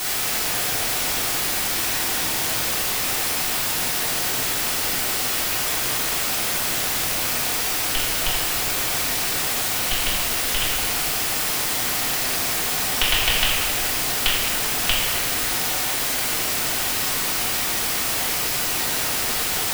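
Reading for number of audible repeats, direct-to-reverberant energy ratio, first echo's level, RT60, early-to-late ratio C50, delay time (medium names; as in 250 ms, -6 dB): no echo, -9.5 dB, no echo, 1.8 s, -1.0 dB, no echo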